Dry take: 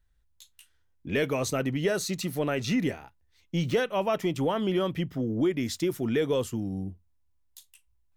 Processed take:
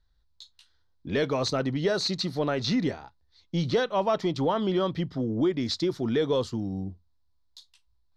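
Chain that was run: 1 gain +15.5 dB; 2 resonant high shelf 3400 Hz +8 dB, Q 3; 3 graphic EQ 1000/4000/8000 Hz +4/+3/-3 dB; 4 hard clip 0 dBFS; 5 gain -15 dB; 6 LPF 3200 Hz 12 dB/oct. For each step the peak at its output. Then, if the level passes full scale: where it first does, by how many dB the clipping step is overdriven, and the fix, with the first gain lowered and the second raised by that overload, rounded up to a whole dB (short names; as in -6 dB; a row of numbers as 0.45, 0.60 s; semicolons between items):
+1.0, +6.0, +7.5, 0.0, -15.0, -15.0 dBFS; step 1, 7.5 dB; step 1 +7.5 dB, step 5 -7 dB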